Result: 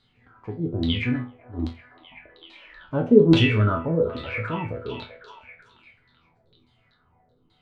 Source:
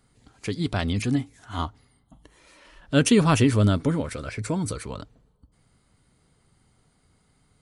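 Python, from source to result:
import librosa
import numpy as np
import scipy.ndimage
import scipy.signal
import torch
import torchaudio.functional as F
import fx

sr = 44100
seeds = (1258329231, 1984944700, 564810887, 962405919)

y = fx.hpss(x, sr, part='harmonic', gain_db=5)
y = fx.filter_lfo_lowpass(y, sr, shape='saw_down', hz=1.2, low_hz=290.0, high_hz=4000.0, q=7.4)
y = fx.resonator_bank(y, sr, root=40, chord='sus4', decay_s=0.3)
y = fx.echo_stepped(y, sr, ms=382, hz=760.0, octaves=0.7, feedback_pct=70, wet_db=-9.0)
y = F.gain(torch.from_numpy(y), 6.0).numpy()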